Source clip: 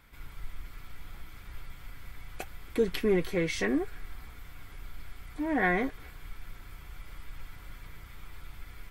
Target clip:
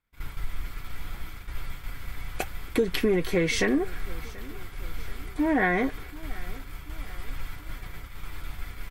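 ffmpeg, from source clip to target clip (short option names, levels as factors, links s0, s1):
-af "agate=range=0.0224:threshold=0.01:ratio=3:detection=peak,acompressor=threshold=0.0355:ratio=6,aecho=1:1:733|1466|2199|2932:0.0891|0.0472|0.025|0.0133,volume=2.82"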